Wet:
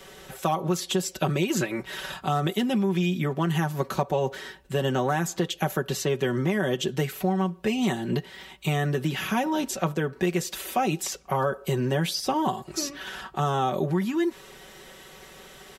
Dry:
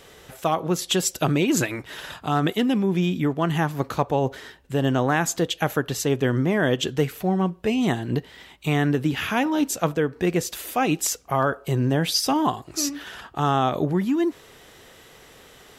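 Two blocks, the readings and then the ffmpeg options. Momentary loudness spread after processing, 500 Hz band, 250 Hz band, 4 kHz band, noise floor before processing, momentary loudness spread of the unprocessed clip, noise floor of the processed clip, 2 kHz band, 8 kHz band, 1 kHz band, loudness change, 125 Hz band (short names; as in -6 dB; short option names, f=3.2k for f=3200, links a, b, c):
9 LU, -2.5 dB, -4.0 dB, -3.5 dB, -50 dBFS, 6 LU, -49 dBFS, -3.5 dB, -5.5 dB, -2.5 dB, -3.5 dB, -2.5 dB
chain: -filter_complex "[0:a]aecho=1:1:5.3:0.75,acrossover=split=100|920|4800[a][b][c][d];[a]acompressor=threshold=-50dB:ratio=4[e];[b]acompressor=threshold=-23dB:ratio=4[f];[c]acompressor=threshold=-33dB:ratio=4[g];[d]acompressor=threshold=-36dB:ratio=4[h];[e][f][g][h]amix=inputs=4:normalize=0"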